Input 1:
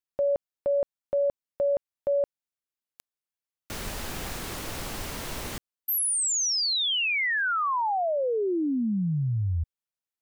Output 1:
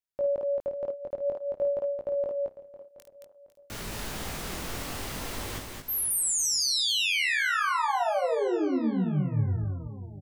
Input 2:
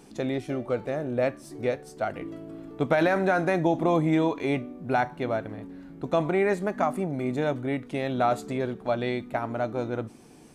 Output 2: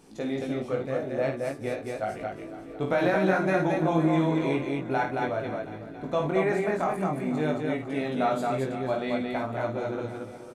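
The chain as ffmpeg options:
-filter_complex "[0:a]asplit=2[s0][s1];[s1]aecho=0:1:501|1002|1503|2004:0.188|0.0885|0.0416|0.0196[s2];[s0][s2]amix=inputs=2:normalize=0,flanger=delay=18.5:depth=4:speed=0.52,asplit=2[s3][s4];[s4]aecho=0:1:52.48|221.6:0.447|0.708[s5];[s3][s5]amix=inputs=2:normalize=0"

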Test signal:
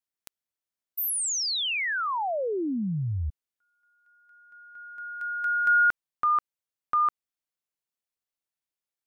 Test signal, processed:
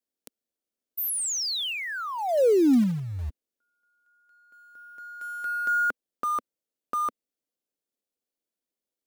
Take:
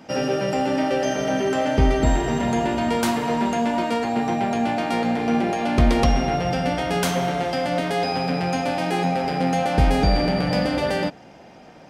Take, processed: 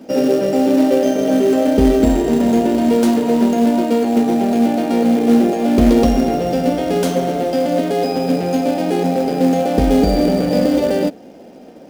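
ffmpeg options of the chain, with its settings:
-filter_complex "[0:a]equalizer=f=125:t=o:w=1:g=-7,equalizer=f=250:t=o:w=1:g=11,equalizer=f=500:t=o:w=1:g=9,equalizer=f=1000:t=o:w=1:g=-5,equalizer=f=2000:t=o:w=1:g=-4,asplit=2[s0][s1];[s1]acrusher=bits=3:mode=log:mix=0:aa=0.000001,volume=0.708[s2];[s0][s2]amix=inputs=2:normalize=0,volume=0.562"

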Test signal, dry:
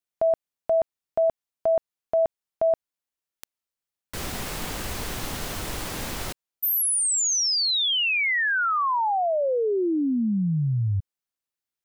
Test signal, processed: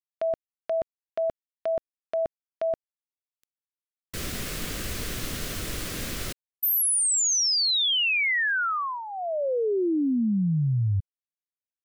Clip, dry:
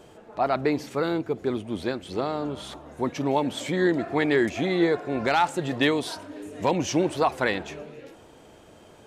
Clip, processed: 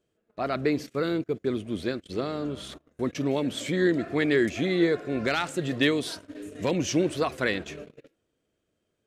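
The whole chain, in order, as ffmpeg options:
-af "agate=range=0.0562:threshold=0.00631:ratio=16:release=29:detection=peak,equalizer=f=860:w=2.4:g=-13.5"

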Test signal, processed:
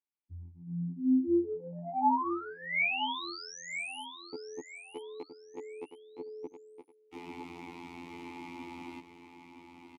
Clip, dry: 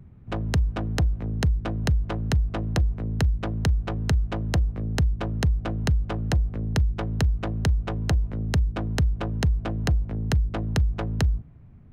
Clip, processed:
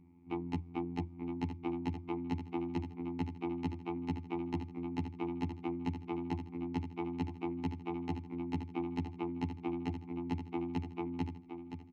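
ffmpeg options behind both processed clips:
-filter_complex "[0:a]afftfilt=real='hypot(re,im)*cos(PI*b)':imag='0':win_size=2048:overlap=0.75,aeval=exprs='0.473*(cos(1*acos(clip(val(0)/0.473,-1,1)))-cos(1*PI/2))+0.0335*(cos(5*acos(clip(val(0)/0.473,-1,1)))-cos(5*PI/2))':c=same,asplit=3[s0][s1][s2];[s0]bandpass=f=300:t=q:w=8,volume=1[s3];[s1]bandpass=f=870:t=q:w=8,volume=0.501[s4];[s2]bandpass=f=2240:t=q:w=8,volume=0.355[s5];[s3][s4][s5]amix=inputs=3:normalize=0,asplit=2[s6][s7];[s7]aecho=0:1:967|1934|2901:0.376|0.105|0.0295[s8];[s6][s8]amix=inputs=2:normalize=0,volume=2.37"

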